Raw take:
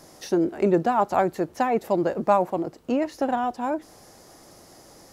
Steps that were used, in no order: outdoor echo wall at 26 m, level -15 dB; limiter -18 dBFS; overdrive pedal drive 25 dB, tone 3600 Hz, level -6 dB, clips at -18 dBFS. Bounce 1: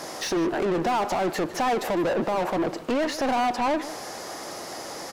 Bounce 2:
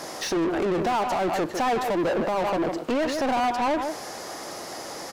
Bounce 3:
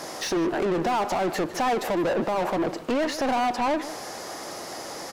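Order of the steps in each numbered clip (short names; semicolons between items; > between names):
overdrive pedal > limiter > outdoor echo; outdoor echo > overdrive pedal > limiter; overdrive pedal > outdoor echo > limiter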